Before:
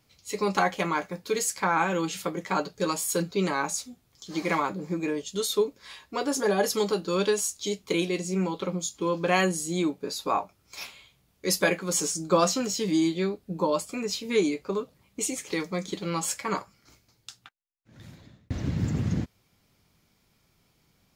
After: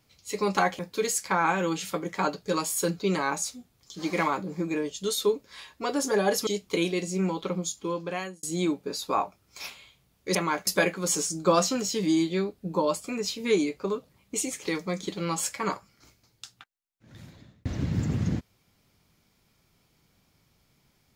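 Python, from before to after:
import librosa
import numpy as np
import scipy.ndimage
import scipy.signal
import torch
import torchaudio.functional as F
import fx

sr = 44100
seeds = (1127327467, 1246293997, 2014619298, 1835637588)

y = fx.edit(x, sr, fx.move(start_s=0.79, length_s=0.32, to_s=11.52),
    fx.cut(start_s=6.79, length_s=0.85),
    fx.fade_out_span(start_s=8.82, length_s=0.78), tone=tone)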